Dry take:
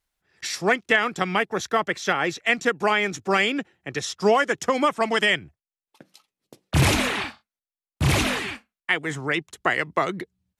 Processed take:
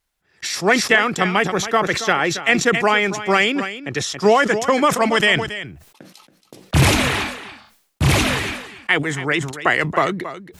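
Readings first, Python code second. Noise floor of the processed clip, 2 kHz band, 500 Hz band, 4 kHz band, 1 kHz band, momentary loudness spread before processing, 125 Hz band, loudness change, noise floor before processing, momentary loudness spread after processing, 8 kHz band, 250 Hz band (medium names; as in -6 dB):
-61 dBFS, +5.0 dB, +5.0 dB, +5.5 dB, +5.0 dB, 10 LU, +5.5 dB, +5.0 dB, under -85 dBFS, 11 LU, +6.5 dB, +6.0 dB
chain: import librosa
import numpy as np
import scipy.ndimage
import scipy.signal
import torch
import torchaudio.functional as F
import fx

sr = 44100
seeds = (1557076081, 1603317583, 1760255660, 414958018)

p1 = x + fx.echo_single(x, sr, ms=277, db=-13.0, dry=0)
p2 = fx.sustainer(p1, sr, db_per_s=82.0)
y = p2 * librosa.db_to_amplitude(4.5)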